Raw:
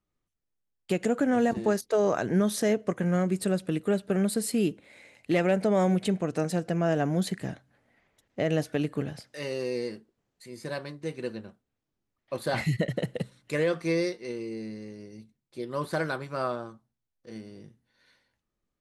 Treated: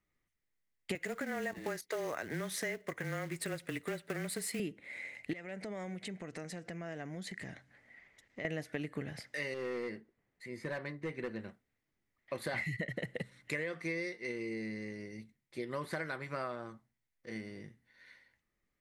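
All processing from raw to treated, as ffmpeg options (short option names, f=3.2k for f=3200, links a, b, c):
-filter_complex "[0:a]asettb=1/sr,asplit=3[a][b][c];[a]atrim=end=0.954[d];[b]atrim=start=0.95:end=4.6,asetpts=PTS-STARTPTS,afade=t=in:d=0.004:c=qsin,afade=t=out:st=3.646:d=0.004:c=qsin,lowshelf=f=330:g=-11,acrusher=bits=4:mode=log:mix=0:aa=0.000001,afreqshift=-22[e];[c]atrim=start=4.596[f];[d][e]acrossfade=d=0.004:c1=hsin:c2=qsin[g];[g][f]acrossfade=d=0.004:c1=qsin:c2=hsin,asettb=1/sr,asplit=3[h][i][j];[h]atrim=end=5.334[k];[i]atrim=start=5.33:end=8.45,asetpts=PTS-STARTPTS,afade=t=in:d=0.004:c=qsin,afade=t=out:st=3.116:d=0.004:c=qsin,lowpass=7k,aemphasis=mode=production:type=cd,acompressor=threshold=-44dB:ratio=3:attack=3.2:release=140:knee=1:detection=peak[l];[j]atrim=start=8.446[m];[k][l]acrossfade=d=0.004:c1=hsin:c2=qsin[n];[n][m]acrossfade=d=0.004:c1=qsin:c2=hsin,asettb=1/sr,asplit=3[o][p][q];[o]atrim=end=9.544[r];[p]atrim=start=9.54:end=11.39,asetpts=PTS-STARTPTS,afade=t=in:d=0.004:c=qsin,afade=t=out:st=1.846:d=0.004:c=qsin,highshelf=f=3.6k:g=-11,volume=28.5dB,asoftclip=hard,volume=-28.5dB[s];[q]atrim=start=11.386[t];[r][s]acrossfade=d=0.004:c1=hsin:c2=qsin[u];[u][t]acrossfade=d=0.004:c1=qsin:c2=hsin,equalizer=f=2k:w=3.1:g=13.5,acompressor=threshold=-34dB:ratio=5,volume=-1.5dB"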